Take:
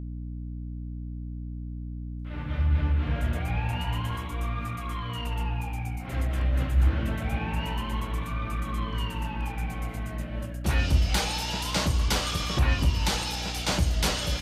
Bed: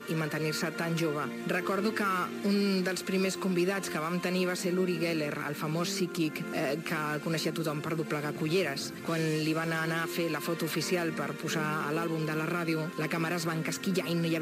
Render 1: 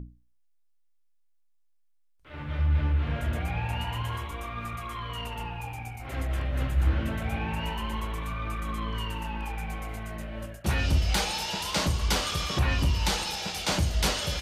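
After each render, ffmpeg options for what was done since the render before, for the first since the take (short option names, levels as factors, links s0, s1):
-af "bandreject=f=60:t=h:w=6,bandreject=f=120:t=h:w=6,bandreject=f=180:t=h:w=6,bandreject=f=240:t=h:w=6,bandreject=f=300:t=h:w=6"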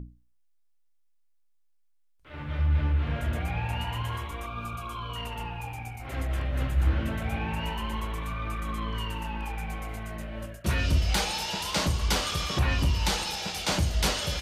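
-filter_complex "[0:a]asettb=1/sr,asplit=3[s0][s1][s2];[s0]atrim=end=4.464[s3];[s1]atrim=start=4.46:end=5.16,asetpts=PTS-STARTPTS,afade=t=in:d=0.004:c=qsin,afade=t=out:st=0.696:d=0.004:c=qsin,asuperstop=centerf=1900:order=8:qfactor=3.1[s4];[s2]atrim=start=5.156[s5];[s3][s4]acrossfade=d=0.004:c1=hsin:c2=qsin[s6];[s6][s5]acrossfade=d=0.004:c1=qsin:c2=hsin,asettb=1/sr,asplit=3[s7][s8][s9];[s7]atrim=end=10.494[s10];[s8]atrim=start=10.49:end=11,asetpts=PTS-STARTPTS,afade=t=in:d=0.004:c=qsin,afade=t=out:st=0.506:d=0.004:c=qsin,asuperstop=centerf=810:order=4:qfactor=5.8[s11];[s9]atrim=start=10.996[s12];[s10][s11]acrossfade=d=0.004:c1=hsin:c2=qsin[s13];[s13][s12]acrossfade=d=0.004:c1=qsin:c2=hsin"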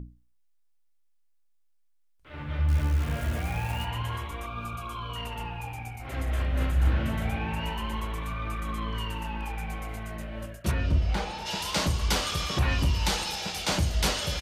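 -filter_complex "[0:a]asettb=1/sr,asplit=3[s0][s1][s2];[s0]atrim=end=2.684[s3];[s1]atrim=start=2.68:end=3.85,asetpts=PTS-STARTPTS,afade=t=in:d=0.004:c=qsin,afade=t=out:st=1.166:d=0.004:c=qsin,acrusher=bits=8:dc=4:mix=0:aa=0.000001[s4];[s2]atrim=start=3.846[s5];[s3][s4]acrossfade=d=0.004:c1=hsin:c2=qsin[s6];[s6][s5]acrossfade=d=0.004:c1=qsin:c2=hsin,asplit=3[s7][s8][s9];[s7]afade=t=out:st=6.26:d=0.02[s10];[s8]asplit=2[s11][s12];[s12]adelay=35,volume=0.631[s13];[s11][s13]amix=inputs=2:normalize=0,afade=t=in:st=6.26:d=0.02,afade=t=out:st=7.3:d=0.02[s14];[s9]afade=t=in:st=7.3:d=0.02[s15];[s10][s14][s15]amix=inputs=3:normalize=0,asplit=3[s16][s17][s18];[s16]afade=t=out:st=10.7:d=0.02[s19];[s17]lowpass=f=1200:p=1,afade=t=in:st=10.7:d=0.02,afade=t=out:st=11.45:d=0.02[s20];[s18]afade=t=in:st=11.45:d=0.02[s21];[s19][s20][s21]amix=inputs=3:normalize=0"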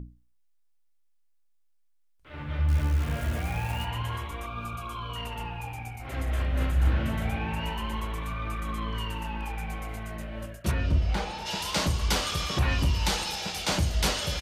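-af anull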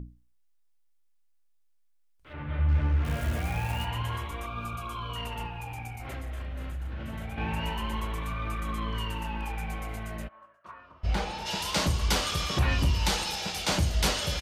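-filter_complex "[0:a]asettb=1/sr,asplit=3[s0][s1][s2];[s0]atrim=end=2.334[s3];[s1]atrim=start=2.33:end=3.05,asetpts=PTS-STARTPTS,afade=t=in:d=0.004:c=qsin,afade=t=out:st=0.716:d=0.004:c=qsin,lowpass=2700[s4];[s2]atrim=start=3.046[s5];[s3][s4]acrossfade=d=0.004:c1=hsin:c2=qsin[s6];[s6][s5]acrossfade=d=0.004:c1=qsin:c2=hsin,asettb=1/sr,asplit=3[s7][s8][s9];[s7]atrim=end=5.464[s10];[s8]atrim=start=5.46:end=7.38,asetpts=PTS-STARTPTS,afade=t=in:d=0.004:c=qsin,afade=t=out:st=1.916:d=0.004:c=qsin,acompressor=threshold=0.0224:ratio=6:attack=3.2:release=140:knee=1:detection=peak[s11];[s9]atrim=start=7.376[s12];[s10][s11]acrossfade=d=0.004:c1=hsin:c2=qsin[s13];[s13][s12]acrossfade=d=0.004:c1=qsin:c2=hsin,asplit=3[s14][s15][s16];[s14]afade=t=out:st=10.27:d=0.02[s17];[s15]bandpass=f=1100:t=q:w=6.1,afade=t=in:st=10.27:d=0.02,afade=t=out:st=11.03:d=0.02[s18];[s16]afade=t=in:st=11.03:d=0.02[s19];[s17][s18][s19]amix=inputs=3:normalize=0"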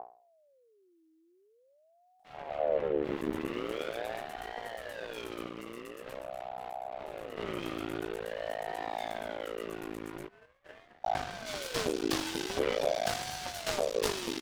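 -af "aeval=exprs='max(val(0),0)':c=same,aeval=exprs='val(0)*sin(2*PI*530*n/s+530*0.4/0.45*sin(2*PI*0.45*n/s))':c=same"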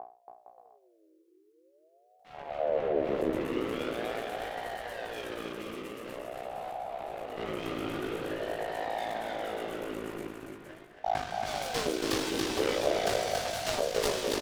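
-filter_complex "[0:a]asplit=2[s0][s1];[s1]adelay=19,volume=0.266[s2];[s0][s2]amix=inputs=2:normalize=0,aecho=1:1:280|462|580.3|657.2|707.2:0.631|0.398|0.251|0.158|0.1"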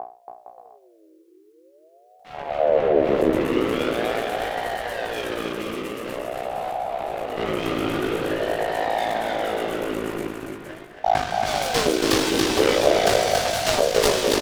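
-af "volume=3.35"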